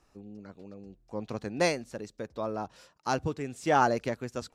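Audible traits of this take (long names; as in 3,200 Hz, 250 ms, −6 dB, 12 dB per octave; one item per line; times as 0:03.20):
background noise floor −68 dBFS
spectral slope −5.0 dB per octave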